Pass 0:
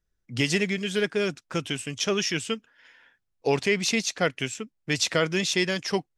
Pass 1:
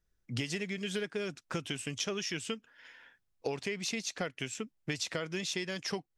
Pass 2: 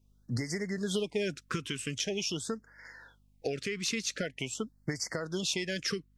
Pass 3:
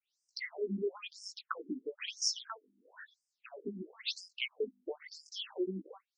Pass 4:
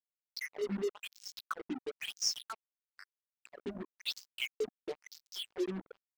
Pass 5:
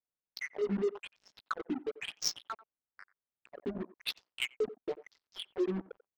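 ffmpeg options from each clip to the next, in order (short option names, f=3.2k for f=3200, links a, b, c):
-af "acompressor=threshold=-32dB:ratio=10"
-af "alimiter=level_in=1.5dB:limit=-24dB:level=0:latency=1:release=380,volume=-1.5dB,aeval=exprs='val(0)+0.000316*(sin(2*PI*50*n/s)+sin(2*PI*2*50*n/s)/2+sin(2*PI*3*50*n/s)/3+sin(2*PI*4*50*n/s)/4+sin(2*PI*5*50*n/s)/5)':c=same,afftfilt=real='re*(1-between(b*sr/1024,690*pow(3200/690,0.5+0.5*sin(2*PI*0.45*pts/sr))/1.41,690*pow(3200/690,0.5+0.5*sin(2*PI*0.45*pts/sr))*1.41))':imag='im*(1-between(b*sr/1024,690*pow(3200/690,0.5+0.5*sin(2*PI*0.45*pts/sr))/1.41,690*pow(3200/690,0.5+0.5*sin(2*PI*0.45*pts/sr))*1.41))':win_size=1024:overlap=0.75,volume=5.5dB"
-af "flanger=delay=15.5:depth=4.7:speed=0.5,aeval=exprs='(tanh(20*val(0)+0.2)-tanh(0.2))/20':c=same,afftfilt=real='re*between(b*sr/1024,260*pow(6800/260,0.5+0.5*sin(2*PI*1*pts/sr))/1.41,260*pow(6800/260,0.5+0.5*sin(2*PI*1*pts/sr))*1.41)':imag='im*between(b*sr/1024,260*pow(6800/260,0.5+0.5*sin(2*PI*1*pts/sr))/1.41,260*pow(6800/260,0.5+0.5*sin(2*PI*1*pts/sr))*1.41)':win_size=1024:overlap=0.75,volume=8dB"
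-af "acrusher=bits=6:mix=0:aa=0.5"
-filter_complex "[0:a]asplit=2[a][b];[b]adelay=90,highpass=300,lowpass=3.4k,asoftclip=type=hard:threshold=-29dB,volume=-16dB[c];[a][c]amix=inputs=2:normalize=0,adynamicsmooth=sensitivity=6:basefreq=1.2k,asplit=2[d][e];[e]asoftclip=type=tanh:threshold=-34dB,volume=-5.5dB[f];[d][f]amix=inputs=2:normalize=0,volume=1dB"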